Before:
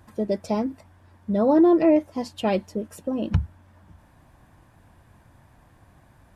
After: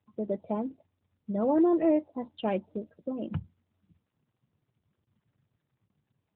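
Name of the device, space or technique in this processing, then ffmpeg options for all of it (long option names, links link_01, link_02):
mobile call with aggressive noise cancelling: -af "highpass=120,afftdn=noise_reduction=32:noise_floor=-42,volume=-6dB" -ar 8000 -c:a libopencore_amrnb -b:a 12200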